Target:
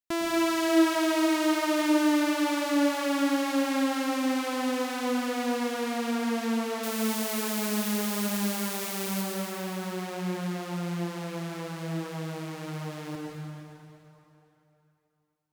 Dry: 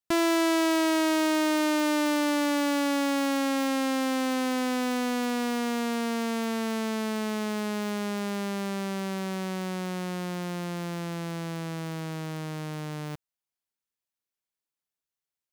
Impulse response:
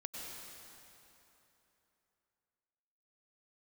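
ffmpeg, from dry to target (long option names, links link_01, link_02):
-filter_complex "[0:a]asettb=1/sr,asplit=3[link_01][link_02][link_03];[link_01]atrim=end=6.834[link_04];[link_02]atrim=start=6.83:end=9.22,asetpts=PTS-STARTPTS,afade=type=in:duration=0.004:curve=qsin,afade=type=out:start_time=2.386:duration=0.004:curve=qsin,aemphasis=mode=production:type=75fm[link_05];[link_03]atrim=start=9.216[link_06];[link_04][link_05]acrossfade=duration=0.004:curve1=hsin:curve2=qsin[link_07];[link_07][link_06]acrossfade=duration=0.004:curve1=qsin:curve2=hsin[link_08];[1:a]atrim=start_sample=2205,asetrate=43218,aresample=44100[link_09];[link_08][link_09]afir=irnorm=-1:irlink=0"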